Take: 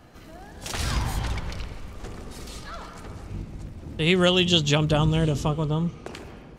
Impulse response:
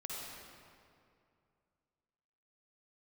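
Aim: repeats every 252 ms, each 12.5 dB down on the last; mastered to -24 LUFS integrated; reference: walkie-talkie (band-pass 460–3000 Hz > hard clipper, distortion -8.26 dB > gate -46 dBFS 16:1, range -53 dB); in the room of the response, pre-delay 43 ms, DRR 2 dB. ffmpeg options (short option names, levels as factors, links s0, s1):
-filter_complex "[0:a]aecho=1:1:252|504|756:0.237|0.0569|0.0137,asplit=2[s0][s1];[1:a]atrim=start_sample=2205,adelay=43[s2];[s1][s2]afir=irnorm=-1:irlink=0,volume=0.794[s3];[s0][s3]amix=inputs=2:normalize=0,highpass=460,lowpass=3000,asoftclip=type=hard:threshold=0.0668,agate=range=0.00224:threshold=0.00501:ratio=16,volume=2"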